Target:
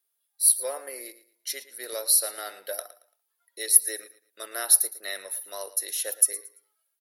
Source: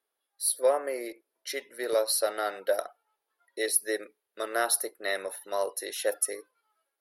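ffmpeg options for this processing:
ffmpeg -i in.wav -filter_complex "[0:a]crystalizer=i=6.5:c=0,asplit=2[link_01][link_02];[link_02]aecho=0:1:113|226|339:0.158|0.0428|0.0116[link_03];[link_01][link_03]amix=inputs=2:normalize=0,volume=-10.5dB" out.wav

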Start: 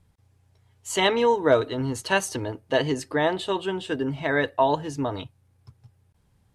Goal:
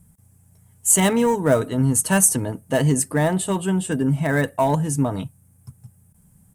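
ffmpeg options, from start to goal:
ffmpeg -i in.wav -filter_complex "[0:a]asplit=2[link_01][link_02];[link_02]aeval=exprs='0.106*(abs(mod(val(0)/0.106+3,4)-2)-1)':channel_layout=same,volume=-12dB[link_03];[link_01][link_03]amix=inputs=2:normalize=0,firequalizer=gain_entry='entry(110,0);entry(170,11);entry(340,-6);entry(640,-3);entry(950,-5);entry(1400,-4);entry(4000,-11);entry(8400,15)':delay=0.05:min_phase=1,volume=4dB" out.wav

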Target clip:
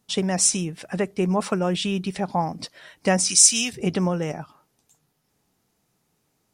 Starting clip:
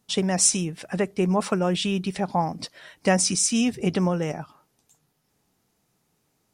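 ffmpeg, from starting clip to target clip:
ffmpeg -i in.wav -filter_complex "[0:a]asettb=1/sr,asplit=3[link_01][link_02][link_03];[link_01]atrim=end=3.294[link_04];[link_02]atrim=start=3.29:end=3.73,asetpts=PTS-STARTPTS,afade=type=in:duration=0.004:curve=qsin,afade=type=out:start_time=0.436:duration=0.004:curve=qsin,tiltshelf=frequency=1400:gain=-10[link_05];[link_03]atrim=start=3.726[link_06];[link_04][link_05]acrossfade=duration=0.004:curve1=hsin:curve2=qsin[link_07];[link_07][link_06]acrossfade=duration=0.004:curve1=qsin:curve2=hsin" out.wav

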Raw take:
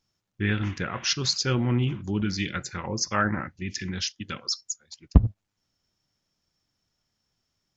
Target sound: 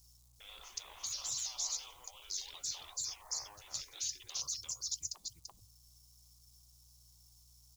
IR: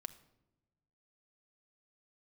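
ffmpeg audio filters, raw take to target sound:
-filter_complex "[0:a]acompressor=threshold=-36dB:ratio=2.5,asettb=1/sr,asplit=3[link_01][link_02][link_03];[link_01]atrim=end=0.834[link_04];[link_02]atrim=start=0.83:end=3.14,asetpts=PTS-STARTPTS,afade=type=in:duration=0.004:curve=qsin,afade=type=out:start_time=2.306:duration=0.004:curve=qsin,adynamicequalizer=threshold=0.00355:dfrequency=4000:dqfactor=0.88:tfrequency=4000:tqfactor=0.88:attack=5:release=100:ratio=0.375:range=3.5:mode=boostabove:tftype=bell[link_05];[link_03]atrim=start=3.136[link_06];[link_04][link_05]acrossfade=duration=0.004:curve1=hsin:curve2=qsin[link_07];[link_07][link_06]acrossfade=duration=0.004:curve1=qsin:curve2=hsin,aecho=1:1:338:0.422,aphaser=in_gain=1:out_gain=1:delay=1.9:decay=0.24:speed=0.91:type=triangular,aeval=exprs='val(0)+0.000631*(sin(2*PI*60*n/s)+sin(2*PI*2*60*n/s)/2+sin(2*PI*3*60*n/s)/3+sin(2*PI*4*60*n/s)/4+sin(2*PI*5*60*n/s)/5)':channel_layout=same,afftfilt=real='re*lt(hypot(re,im),0.0224)':imag='im*lt(hypot(re,im),0.0224)':win_size=1024:overlap=0.75,acrusher=bits=11:mix=0:aa=0.000001,firequalizer=gain_entry='entry(110,0);entry(210,-17);entry(800,-4);entry(1100,-3);entry(1600,-17);entry(4000,5);entry(6300,12)':delay=0.05:min_phase=1"

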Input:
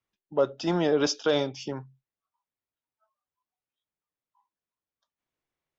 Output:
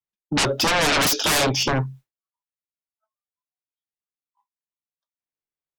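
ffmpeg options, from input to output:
ffmpeg -i in.wav -af "agate=range=-33dB:threshold=-55dB:ratio=3:detection=peak,aeval=exprs='0.237*sin(PI/2*10*val(0)/0.237)':channel_layout=same,volume=-3.5dB" out.wav

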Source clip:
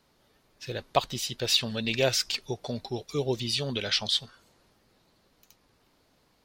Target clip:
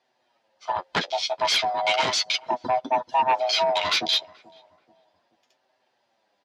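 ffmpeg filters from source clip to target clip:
ffmpeg -i in.wav -filter_complex "[0:a]afftfilt=real='real(if(lt(b,1008),b+24*(1-2*mod(floor(b/24),2)),b),0)':imag='imag(if(lt(b,1008),b+24*(1-2*mod(floor(b/24),2)),b),0)':win_size=2048:overlap=0.75,afwtdn=0.0158,asplit=2[link_01][link_02];[link_02]acompressor=threshold=-36dB:ratio=12,volume=-0.5dB[link_03];[link_01][link_03]amix=inputs=2:normalize=0,flanger=delay=7.8:depth=4.6:regen=19:speed=0.35:shape=sinusoidal,aeval=exprs='0.266*sin(PI/2*3.55*val(0)/0.266)':channel_layout=same,highpass=250,lowpass=5000,asplit=2[link_04][link_05];[link_05]adelay=432,lowpass=frequency=850:poles=1,volume=-21dB,asplit=2[link_06][link_07];[link_07]adelay=432,lowpass=frequency=850:poles=1,volume=0.47,asplit=2[link_08][link_09];[link_09]adelay=432,lowpass=frequency=850:poles=1,volume=0.47[link_10];[link_06][link_08][link_10]amix=inputs=3:normalize=0[link_11];[link_04][link_11]amix=inputs=2:normalize=0,volume=-4dB" out.wav

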